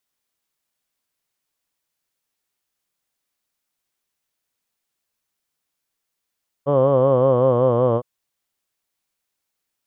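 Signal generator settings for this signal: formant vowel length 1.36 s, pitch 138 Hz, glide -2.5 st, F1 530 Hz, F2 1.1 kHz, F3 3.1 kHz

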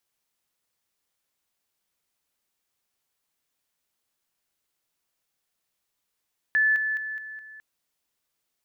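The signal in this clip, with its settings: level ladder 1.74 kHz -18 dBFS, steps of -6 dB, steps 5, 0.21 s 0.00 s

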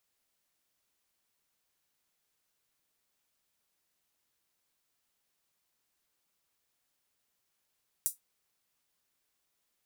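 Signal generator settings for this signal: closed hi-hat, high-pass 8.5 kHz, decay 0.15 s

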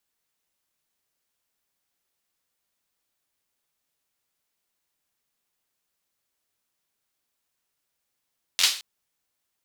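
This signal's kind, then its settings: hand clap length 0.22 s, bursts 5, apart 11 ms, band 3.8 kHz, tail 0.39 s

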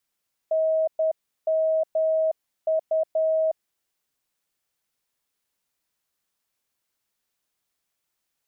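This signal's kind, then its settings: Morse "NMU" 10 wpm 637 Hz -19 dBFS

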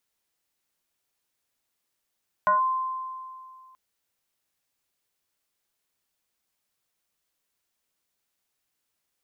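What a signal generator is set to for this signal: FM tone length 1.28 s, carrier 1.04 kHz, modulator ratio 0.41, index 0.78, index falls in 0.14 s linear, decay 2.24 s, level -16.5 dB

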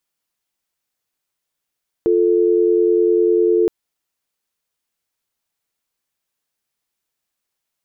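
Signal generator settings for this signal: call progress tone dial tone, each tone -14.5 dBFS 1.62 s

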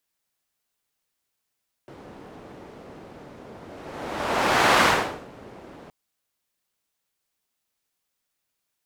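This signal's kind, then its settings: whoosh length 4.02 s, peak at 2.95 s, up 1.36 s, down 0.49 s, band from 400 Hz, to 1.2 kHz, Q 0.77, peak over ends 26.5 dB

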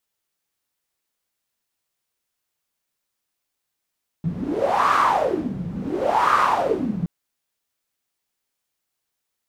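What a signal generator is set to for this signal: wind-like swept noise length 2.82 s, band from 170 Hz, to 1.2 kHz, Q 6.6, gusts 2, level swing 10.5 dB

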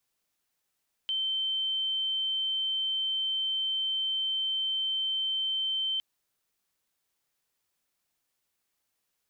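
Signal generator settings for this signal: tone sine 3.1 kHz -27 dBFS 4.91 s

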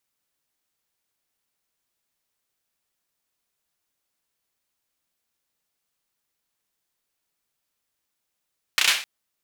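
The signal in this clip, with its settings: hand clap length 0.26 s, bursts 4, apart 32 ms, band 2.6 kHz, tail 0.40 s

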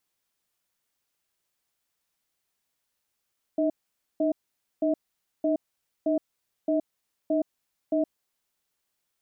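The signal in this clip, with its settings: cadence 305 Hz, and 638 Hz, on 0.12 s, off 0.50 s, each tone -24 dBFS 4.58 s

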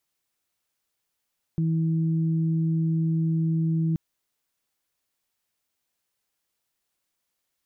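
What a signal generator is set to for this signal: steady additive tone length 2.38 s, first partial 162 Hz, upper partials -12 dB, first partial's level -21 dB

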